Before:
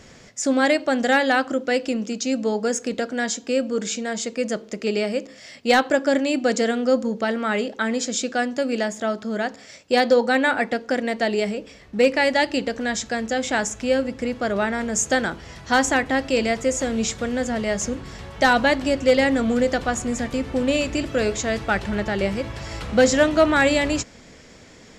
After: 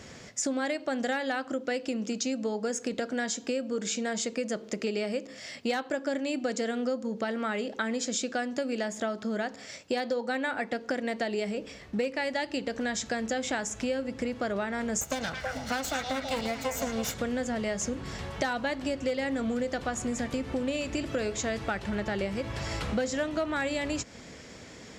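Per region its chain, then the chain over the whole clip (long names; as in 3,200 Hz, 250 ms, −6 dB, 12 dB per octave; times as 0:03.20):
0:15.01–0:17.14: lower of the sound and its delayed copy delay 1.4 ms + echo through a band-pass that steps 108 ms, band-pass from 4,600 Hz, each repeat −1.4 octaves, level −2 dB
whole clip: high-pass filter 51 Hz; downward compressor 6 to 1, threshold −28 dBFS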